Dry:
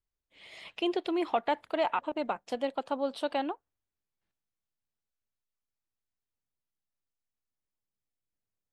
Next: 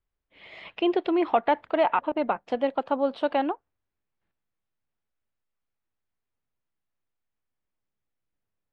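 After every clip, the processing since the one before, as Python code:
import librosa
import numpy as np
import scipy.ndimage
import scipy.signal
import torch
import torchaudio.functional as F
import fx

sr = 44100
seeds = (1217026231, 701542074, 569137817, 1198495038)

y = scipy.signal.sosfilt(scipy.signal.butter(2, 2500.0, 'lowpass', fs=sr, output='sos'), x)
y = y * 10.0 ** (6.5 / 20.0)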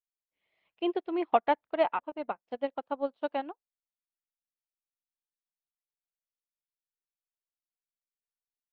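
y = fx.upward_expand(x, sr, threshold_db=-38.0, expansion=2.5)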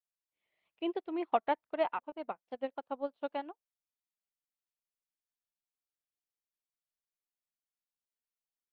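y = fx.vibrato(x, sr, rate_hz=3.3, depth_cents=66.0)
y = y * 10.0 ** (-5.0 / 20.0)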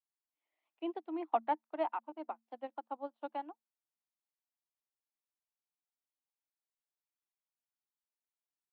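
y = scipy.signal.sosfilt(scipy.signal.cheby1(6, 9, 220.0, 'highpass', fs=sr, output='sos'), x)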